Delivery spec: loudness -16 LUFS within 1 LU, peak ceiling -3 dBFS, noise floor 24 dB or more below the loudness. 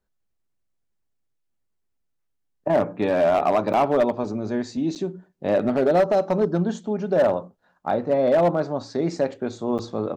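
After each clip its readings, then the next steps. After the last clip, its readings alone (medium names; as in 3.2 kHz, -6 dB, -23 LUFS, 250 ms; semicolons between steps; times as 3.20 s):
clipped samples 1.2%; clipping level -13.0 dBFS; dropouts 3; longest dropout 8.0 ms; loudness -22.5 LUFS; peak level -13.0 dBFS; loudness target -16.0 LUFS
-> clip repair -13 dBFS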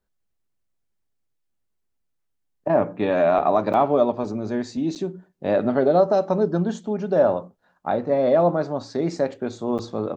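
clipped samples 0.0%; dropouts 3; longest dropout 8.0 ms
-> interpolate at 3.73/4.95/9.78 s, 8 ms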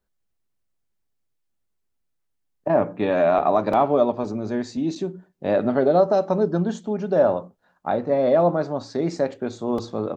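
dropouts 0; loudness -22.0 LUFS; peak level -7.0 dBFS; loudness target -16.0 LUFS
-> trim +6 dB; peak limiter -3 dBFS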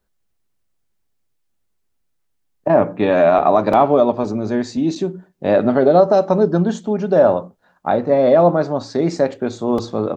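loudness -16.5 LUFS; peak level -3.0 dBFS; noise floor -68 dBFS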